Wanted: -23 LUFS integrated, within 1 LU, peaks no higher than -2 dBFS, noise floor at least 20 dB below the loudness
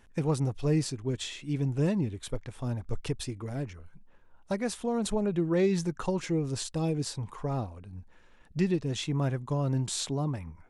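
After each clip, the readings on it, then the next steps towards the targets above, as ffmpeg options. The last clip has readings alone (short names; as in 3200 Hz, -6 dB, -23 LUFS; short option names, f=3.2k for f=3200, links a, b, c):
loudness -31.0 LUFS; peak -16.0 dBFS; loudness target -23.0 LUFS
-> -af "volume=8dB"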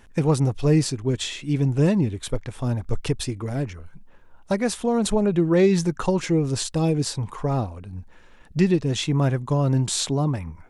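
loudness -23.0 LUFS; peak -8.0 dBFS; noise floor -49 dBFS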